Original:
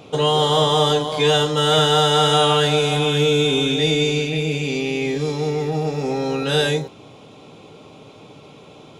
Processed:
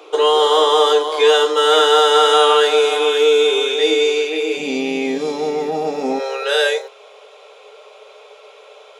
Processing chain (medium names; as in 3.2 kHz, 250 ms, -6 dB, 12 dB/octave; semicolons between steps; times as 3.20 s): rippled Chebyshev high-pass 310 Hz, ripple 6 dB, from 4.56 s 170 Hz, from 6.18 s 410 Hz; trim +6.5 dB